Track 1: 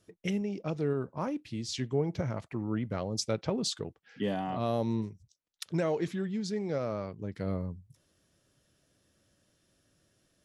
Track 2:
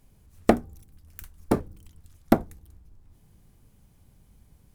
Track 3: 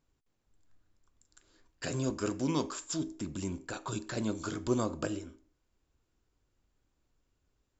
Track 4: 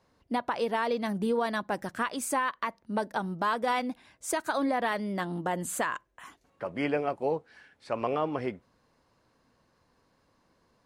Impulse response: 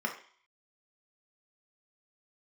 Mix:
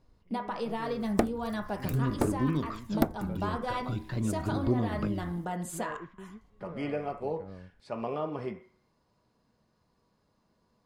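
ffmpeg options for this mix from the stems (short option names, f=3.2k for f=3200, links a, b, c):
-filter_complex "[0:a]lowpass=1.9k,volume=-13dB[a];[1:a]adelay=700,volume=0.5dB[b];[2:a]lowshelf=f=350:g=11.5,aphaser=in_gain=1:out_gain=1:delay=2.3:decay=0.55:speed=0.43:type=triangular,lowpass=f=4.2k:w=0.5412,lowpass=f=4.2k:w=1.3066,volume=-4.5dB[c];[3:a]volume=-4dB,asplit=3[d][e][f];[e]volume=-9.5dB[g];[f]apad=whole_len=460588[h];[a][h]sidechaingate=range=-23dB:threshold=-59dB:ratio=16:detection=peak[i];[4:a]atrim=start_sample=2205[j];[g][j]afir=irnorm=-1:irlink=0[k];[i][b][c][d][k]amix=inputs=5:normalize=0,acompressor=threshold=-27dB:ratio=2"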